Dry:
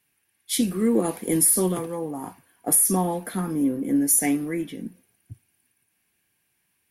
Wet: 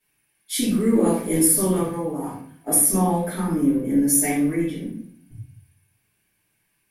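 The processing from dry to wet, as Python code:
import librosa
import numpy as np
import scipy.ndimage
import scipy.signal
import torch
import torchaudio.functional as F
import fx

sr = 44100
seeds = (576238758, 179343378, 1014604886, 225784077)

y = fx.room_shoebox(x, sr, seeds[0], volume_m3=78.0, walls='mixed', distance_m=2.6)
y = F.gain(torch.from_numpy(y), -8.5).numpy()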